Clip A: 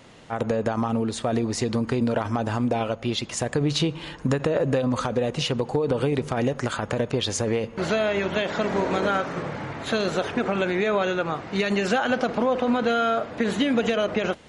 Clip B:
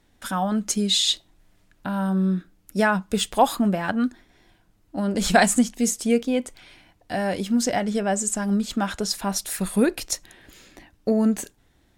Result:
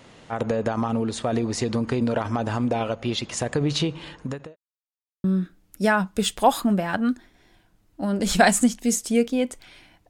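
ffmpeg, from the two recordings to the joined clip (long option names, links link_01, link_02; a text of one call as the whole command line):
ffmpeg -i cue0.wav -i cue1.wav -filter_complex "[0:a]apad=whole_dur=10.09,atrim=end=10.09,asplit=2[link_01][link_02];[link_01]atrim=end=4.56,asetpts=PTS-STARTPTS,afade=type=out:start_time=3.57:duration=0.99:curve=qsin[link_03];[link_02]atrim=start=4.56:end=5.24,asetpts=PTS-STARTPTS,volume=0[link_04];[1:a]atrim=start=2.19:end=7.04,asetpts=PTS-STARTPTS,afade=type=in:duration=0.004:curve=hsin[link_05];[link_03][link_04][link_05]concat=n=3:v=0:a=1" out.wav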